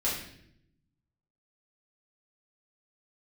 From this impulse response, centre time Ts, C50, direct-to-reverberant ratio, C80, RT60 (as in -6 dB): 47 ms, 3.5 dB, -8.5 dB, 6.5 dB, 0.70 s